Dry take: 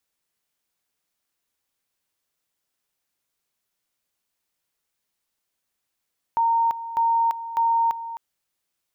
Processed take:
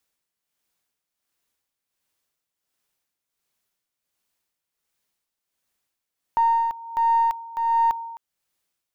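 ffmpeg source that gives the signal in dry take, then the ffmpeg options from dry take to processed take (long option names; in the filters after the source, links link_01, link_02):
-f lavfi -i "aevalsrc='pow(10,(-17-13*gte(mod(t,0.6),0.34))/20)*sin(2*PI*921*t)':duration=1.8:sample_rate=44100"
-filter_complex "[0:a]asplit=2[link_01][link_02];[link_02]aeval=exprs='clip(val(0),-1,0.0376)':channel_layout=same,volume=-10dB[link_03];[link_01][link_03]amix=inputs=2:normalize=0,tremolo=f=1.4:d=0.6"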